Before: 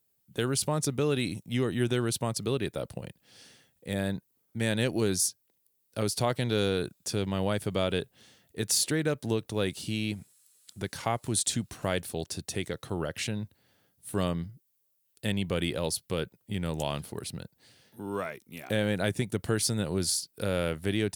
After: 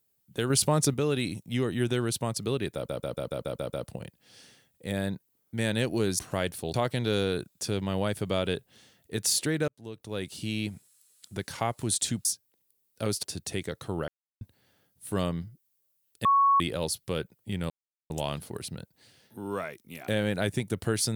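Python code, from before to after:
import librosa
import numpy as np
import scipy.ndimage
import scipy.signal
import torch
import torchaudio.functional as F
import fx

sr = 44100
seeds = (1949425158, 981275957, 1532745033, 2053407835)

y = fx.edit(x, sr, fx.clip_gain(start_s=0.5, length_s=0.44, db=4.5),
    fx.stutter(start_s=2.75, slice_s=0.14, count=8),
    fx.swap(start_s=5.21, length_s=0.98, other_s=11.7, other_length_s=0.55),
    fx.fade_in_span(start_s=9.13, length_s=0.88),
    fx.silence(start_s=13.1, length_s=0.33),
    fx.bleep(start_s=15.27, length_s=0.35, hz=1110.0, db=-18.0),
    fx.insert_silence(at_s=16.72, length_s=0.4), tone=tone)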